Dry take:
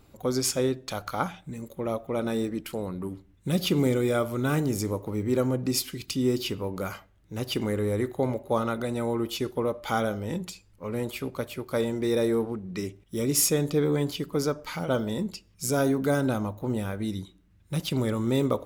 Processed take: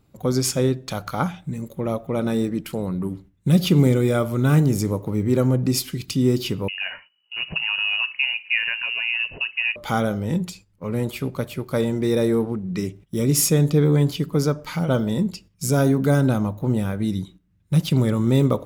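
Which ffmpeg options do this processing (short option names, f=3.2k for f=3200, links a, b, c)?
-filter_complex "[0:a]asettb=1/sr,asplit=3[a][b][c];[a]atrim=end=6.684[d];[b]atrim=start=6.68:end=9.76,asetpts=PTS-STARTPTS,afade=t=in:d=0.004:c=qsin,afade=t=out:st=3.076:d=0.004:c=qsin,lowpass=f=2.6k:t=q:w=0.5098,lowpass=f=2.6k:t=q:w=0.6013,lowpass=f=2.6k:t=q:w=0.9,lowpass=f=2.6k:t=q:w=2.563,afreqshift=-3000[e];[c]atrim=start=9.756[f];[d][e]acrossfade=d=0.004:c1=hsin:c2=qsin[g];[g][f]acrossfade=d=0.004:c1=qsin:c2=hsin,agate=range=-10dB:threshold=-50dB:ratio=16:detection=peak,equalizer=f=150:t=o:w=1.1:g=9,volume=3dB"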